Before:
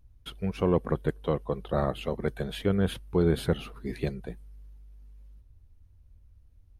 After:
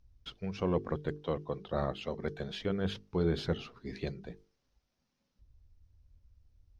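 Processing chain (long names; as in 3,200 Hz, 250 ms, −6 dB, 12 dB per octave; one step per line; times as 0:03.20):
high shelf with overshoot 7,700 Hz −13 dB, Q 3
mains-hum notches 50/100/150/200/250/300/350/400/450 Hz
level −5.5 dB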